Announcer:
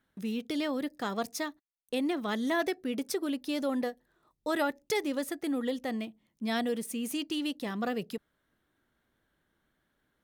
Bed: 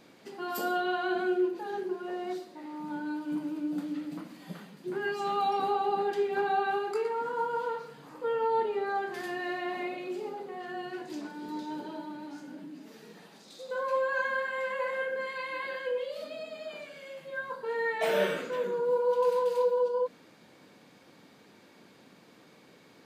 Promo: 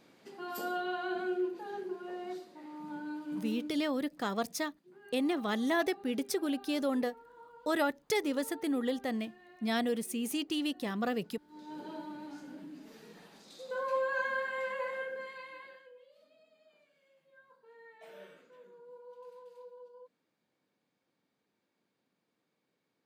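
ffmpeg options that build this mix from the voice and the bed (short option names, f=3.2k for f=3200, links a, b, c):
-filter_complex "[0:a]adelay=3200,volume=-0.5dB[a];[1:a]volume=15dB,afade=t=out:st=3.53:d=0.32:silence=0.125893,afade=t=in:st=11.48:d=0.44:silence=0.0944061,afade=t=out:st=14.62:d=1.28:silence=0.0794328[b];[a][b]amix=inputs=2:normalize=0"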